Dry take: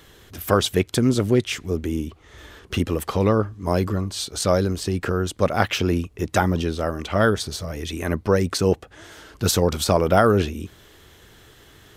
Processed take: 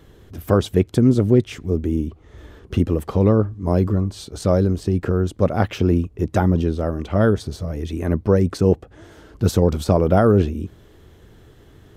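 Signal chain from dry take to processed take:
tilt shelving filter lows +7.5 dB, about 850 Hz
level −2 dB

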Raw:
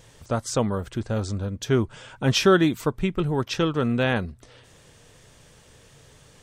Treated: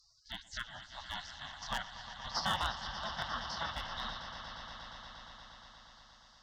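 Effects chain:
spectrum averaged block by block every 50 ms
single-sideband voice off tune −96 Hz 300–3,200 Hz
spectral tilt +2 dB per octave
in parallel at +3 dB: downward compressor 10 to 1, threshold −36 dBFS, peak gain reduction 19.5 dB
on the sum: gate on every frequency bin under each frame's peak −30 dB weak
on a send: echo that builds up and dies away 118 ms, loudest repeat 5, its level −13.5 dB
on the sum: asymmetric clip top −37.5 dBFS
phaser with its sweep stopped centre 1,000 Hz, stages 4
level +16 dB

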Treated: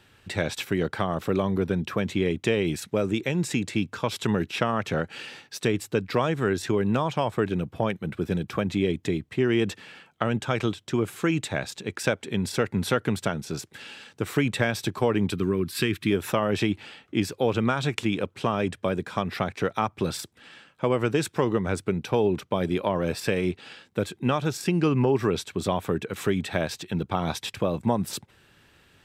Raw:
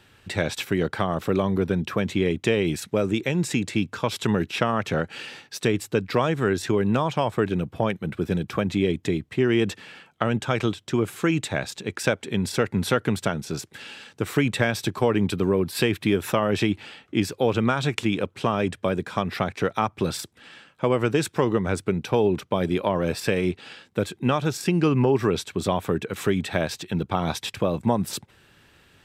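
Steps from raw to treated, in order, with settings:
0:15.35–0:16.11: flat-topped bell 660 Hz −11 dB 1.2 octaves
level −2 dB

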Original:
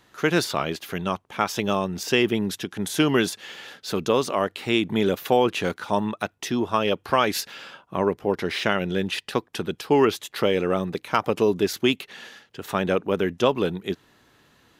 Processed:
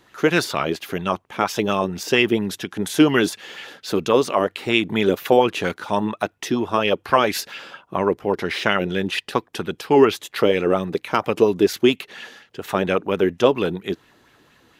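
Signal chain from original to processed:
auto-filter bell 4.3 Hz 300–2,700 Hz +8 dB
level +1 dB

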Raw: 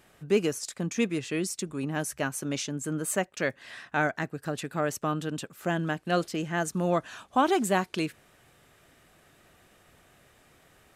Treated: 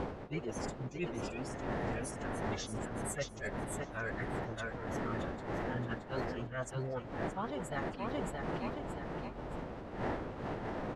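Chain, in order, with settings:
spectral dynamics exaggerated over time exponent 2
wind on the microphone 610 Hz −31 dBFS
dynamic equaliser 1,800 Hz, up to +8 dB, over −53 dBFS, Q 4.8
on a send: repeating echo 622 ms, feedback 25%, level −7.5 dB
on the sum: mains hum 60 Hz, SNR 22 dB
phase-vocoder pitch shift with formants kept −5 semitones
reversed playback
downward compressor 12 to 1, threshold −36 dBFS, peak gain reduction 21 dB
reversed playback
high-shelf EQ 11,000 Hz −5 dB
amplitude modulation by smooth noise, depth 55%
level +4 dB

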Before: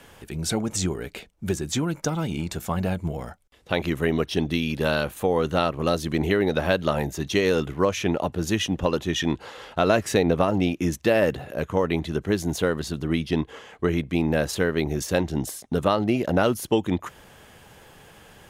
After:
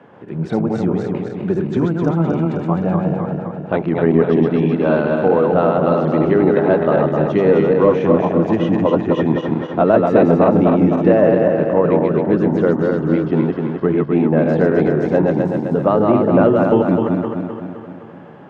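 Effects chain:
feedback delay that plays each chunk backwards 129 ms, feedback 73%, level −2.5 dB
high-pass filter 130 Hz 24 dB per octave
soft clipping −7 dBFS, distortion −25 dB
low-pass filter 1,100 Hz 12 dB per octave
level +7.5 dB

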